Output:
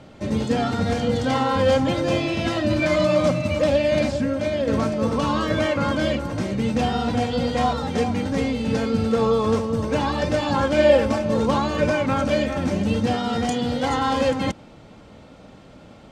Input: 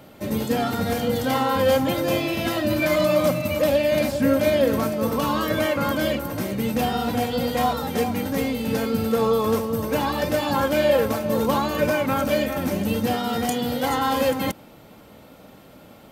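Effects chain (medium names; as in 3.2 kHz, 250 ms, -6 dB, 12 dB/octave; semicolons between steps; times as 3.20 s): low-pass 7.6 kHz 24 dB/octave; bass shelf 120 Hz +8 dB; 4.16–4.68 s: compression, threshold -20 dBFS, peak gain reduction 7 dB; 10.78–11.24 s: comb 3.4 ms, depth 57%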